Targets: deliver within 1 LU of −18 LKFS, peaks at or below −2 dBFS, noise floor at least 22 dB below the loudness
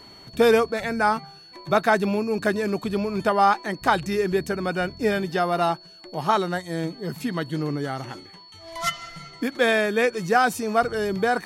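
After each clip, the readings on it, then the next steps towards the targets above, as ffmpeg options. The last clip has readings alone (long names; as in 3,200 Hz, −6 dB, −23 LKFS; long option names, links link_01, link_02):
interfering tone 4,400 Hz; level of the tone −46 dBFS; integrated loudness −23.5 LKFS; sample peak −6.0 dBFS; target loudness −18.0 LKFS
→ -af "bandreject=frequency=4400:width=30"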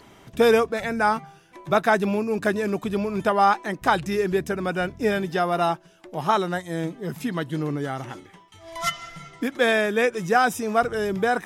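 interfering tone none found; integrated loudness −23.5 LKFS; sample peak −6.0 dBFS; target loudness −18.0 LKFS
→ -af "volume=5.5dB,alimiter=limit=-2dB:level=0:latency=1"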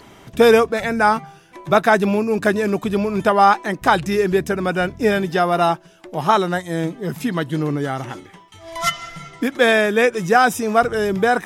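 integrated loudness −18.0 LKFS; sample peak −2.0 dBFS; background noise floor −46 dBFS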